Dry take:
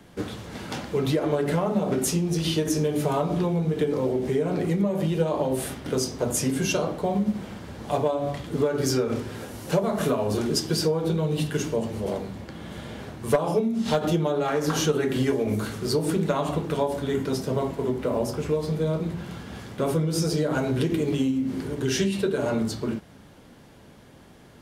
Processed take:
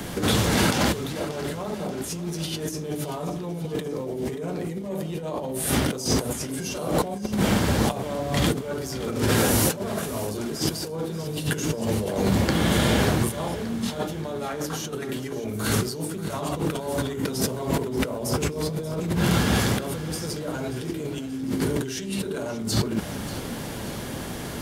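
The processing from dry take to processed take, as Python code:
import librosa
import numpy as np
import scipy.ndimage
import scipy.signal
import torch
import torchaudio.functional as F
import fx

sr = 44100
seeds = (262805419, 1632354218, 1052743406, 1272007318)

y = fx.high_shelf(x, sr, hz=6200.0, db=9.0)
y = fx.over_compress(y, sr, threshold_db=-36.0, ratio=-1.0)
y = fx.echo_feedback(y, sr, ms=583, feedback_pct=54, wet_db=-14.5)
y = y * 10.0 ** (8.0 / 20.0)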